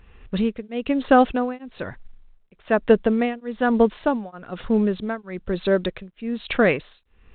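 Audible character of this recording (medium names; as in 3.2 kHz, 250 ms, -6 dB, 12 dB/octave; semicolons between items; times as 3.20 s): tremolo triangle 1.1 Hz, depth 100%; µ-law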